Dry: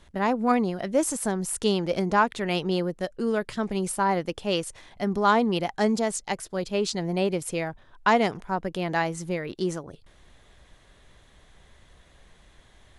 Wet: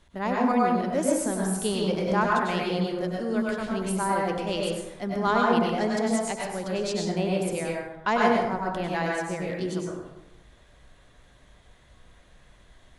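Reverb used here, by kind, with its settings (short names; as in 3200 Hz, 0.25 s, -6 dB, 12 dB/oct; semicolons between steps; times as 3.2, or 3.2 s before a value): plate-style reverb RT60 0.96 s, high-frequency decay 0.5×, pre-delay 85 ms, DRR -3 dB; gain -5 dB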